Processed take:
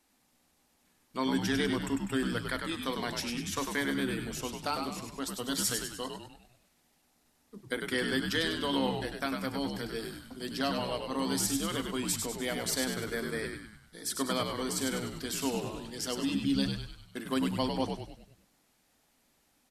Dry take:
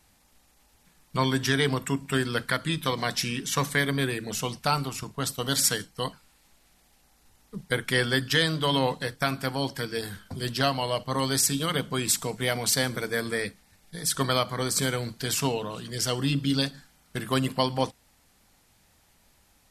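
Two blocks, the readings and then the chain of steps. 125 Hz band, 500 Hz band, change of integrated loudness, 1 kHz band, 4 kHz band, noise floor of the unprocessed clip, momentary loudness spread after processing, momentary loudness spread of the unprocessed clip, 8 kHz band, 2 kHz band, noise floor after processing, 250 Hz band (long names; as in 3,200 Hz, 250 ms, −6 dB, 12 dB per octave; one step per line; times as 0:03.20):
−10.5 dB, −5.5 dB, −6.0 dB, −6.5 dB, −7.0 dB, −63 dBFS, 10 LU, 9 LU, −7.0 dB, −7.0 dB, −71 dBFS, −2.0 dB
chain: low shelf with overshoot 190 Hz −9 dB, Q 3
echo with shifted repeats 99 ms, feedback 49%, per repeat −76 Hz, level −5 dB
level −8.5 dB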